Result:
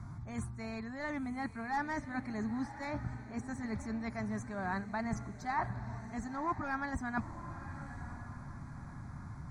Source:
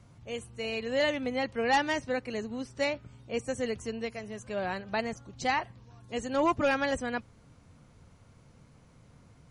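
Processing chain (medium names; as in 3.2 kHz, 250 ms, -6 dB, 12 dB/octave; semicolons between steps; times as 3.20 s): tracing distortion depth 0.021 ms; treble shelf 7.8 kHz -5.5 dB; reverse; compression 12:1, threshold -40 dBFS, peak gain reduction 19 dB; reverse; treble shelf 3.5 kHz -9.5 dB; static phaser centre 1.2 kHz, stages 4; on a send: echo that smears into a reverb 988 ms, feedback 40%, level -12 dB; on the sum: trim +12 dB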